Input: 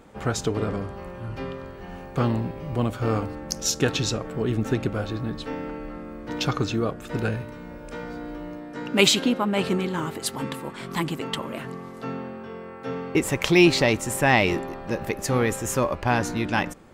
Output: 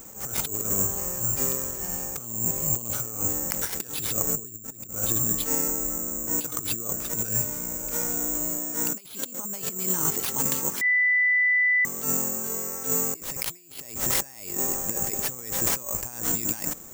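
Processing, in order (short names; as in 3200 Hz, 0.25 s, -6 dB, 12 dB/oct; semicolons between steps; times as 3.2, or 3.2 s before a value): 4.27–4.9 low shelf 370 Hz +6 dB; negative-ratio compressor -29 dBFS, ratio -0.5; 5.68–6.47 air absorption 370 m; careless resampling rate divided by 6×, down none, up zero stuff; 10.81–11.85 bleep 1990 Hz -13 dBFS; attack slew limiter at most 120 dB/s; gain -5 dB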